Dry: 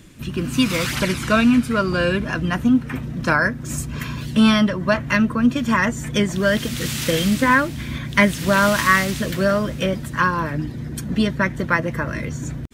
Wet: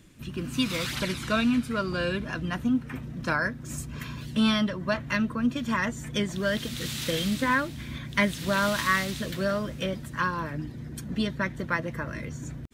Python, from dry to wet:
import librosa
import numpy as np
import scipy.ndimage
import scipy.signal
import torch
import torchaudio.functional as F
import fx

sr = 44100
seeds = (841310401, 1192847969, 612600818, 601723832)

y = fx.dynamic_eq(x, sr, hz=3800.0, q=2.9, threshold_db=-42.0, ratio=4.0, max_db=6)
y = F.gain(torch.from_numpy(y), -9.0).numpy()